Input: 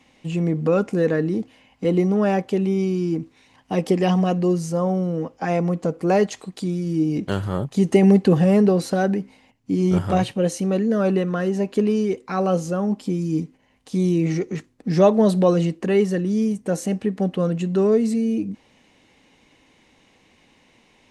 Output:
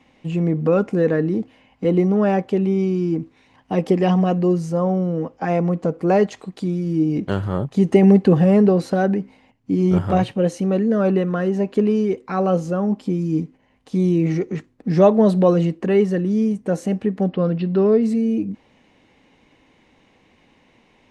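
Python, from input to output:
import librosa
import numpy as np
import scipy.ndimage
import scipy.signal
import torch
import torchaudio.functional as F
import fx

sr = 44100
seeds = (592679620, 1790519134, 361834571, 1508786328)

y = fx.resample_bad(x, sr, factor=4, down='none', up='filtered', at=(17.29, 18.03))
y = fx.high_shelf(y, sr, hz=4100.0, db=-12.0)
y = y * 10.0 ** (2.0 / 20.0)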